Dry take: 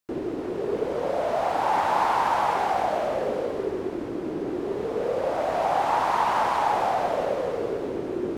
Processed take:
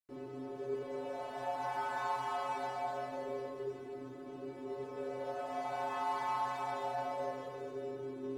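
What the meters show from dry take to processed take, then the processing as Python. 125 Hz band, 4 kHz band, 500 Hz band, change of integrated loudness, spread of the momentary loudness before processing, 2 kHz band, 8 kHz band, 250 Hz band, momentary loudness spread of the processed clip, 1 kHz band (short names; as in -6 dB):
-12.0 dB, -13.0 dB, -14.0 dB, -14.0 dB, 8 LU, -12.5 dB, -13.0 dB, -15.0 dB, 9 LU, -14.0 dB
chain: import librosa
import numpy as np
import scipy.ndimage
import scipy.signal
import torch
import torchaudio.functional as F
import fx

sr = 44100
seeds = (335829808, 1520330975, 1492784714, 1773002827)

y = fx.stiff_resonator(x, sr, f0_hz=130.0, decay_s=0.73, stiffness=0.008)
y = F.gain(torch.from_numpy(y), 1.0).numpy()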